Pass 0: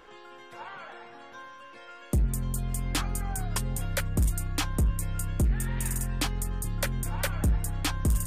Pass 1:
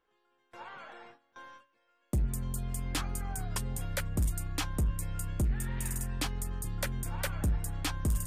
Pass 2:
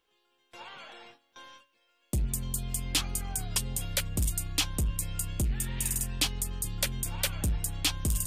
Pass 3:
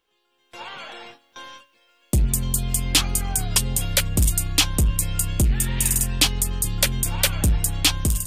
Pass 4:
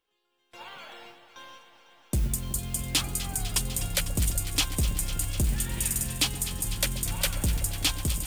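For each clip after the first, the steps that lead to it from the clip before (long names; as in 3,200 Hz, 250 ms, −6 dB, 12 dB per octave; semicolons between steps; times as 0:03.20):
noise gate with hold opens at −36 dBFS; level −4.5 dB
high shelf with overshoot 2,200 Hz +8 dB, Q 1.5
automatic gain control gain up to 8 dB; level +2 dB
noise that follows the level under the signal 22 dB; delay that swaps between a low-pass and a high-pass 125 ms, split 920 Hz, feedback 90%, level −11.5 dB; level −7.5 dB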